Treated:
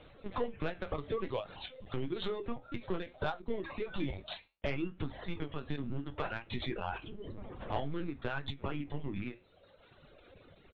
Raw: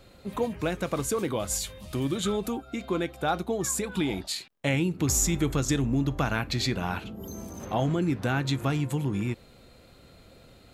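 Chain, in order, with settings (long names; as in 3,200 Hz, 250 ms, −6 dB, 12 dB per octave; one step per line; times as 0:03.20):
in parallel at −9.5 dB: sample-and-hold swept by an LFO 29×, swing 60% 0.41 Hz
on the sum: high-pass filter 48 Hz 6 dB per octave
downward compressor 6 to 1, threshold −27 dBFS, peak gain reduction 8 dB
low-shelf EQ 170 Hz −8.5 dB
linear-prediction vocoder at 8 kHz pitch kept
reverb reduction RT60 1.4 s
double-tracking delay 21 ms −13 dB
flanger 0.6 Hz, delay 8.1 ms, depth 5.9 ms, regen −72%
soft clipping −24.5 dBFS, distortion −23 dB
every ending faded ahead of time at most 220 dB per second
level +4 dB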